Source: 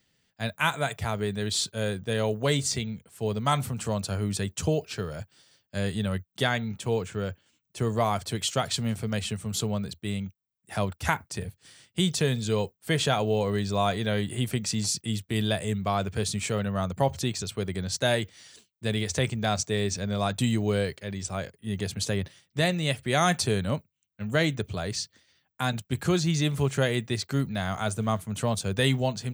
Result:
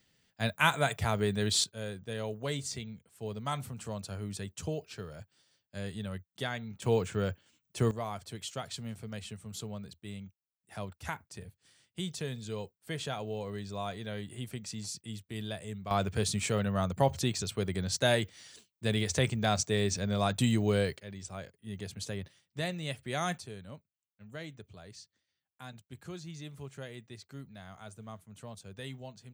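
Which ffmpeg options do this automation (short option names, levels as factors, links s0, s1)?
-af "asetnsamples=n=441:p=0,asendcmd='1.64 volume volume -10dB;6.82 volume volume -0.5dB;7.91 volume volume -12dB;15.91 volume volume -2dB;21 volume volume -10dB;23.38 volume volume -19dB',volume=0.944"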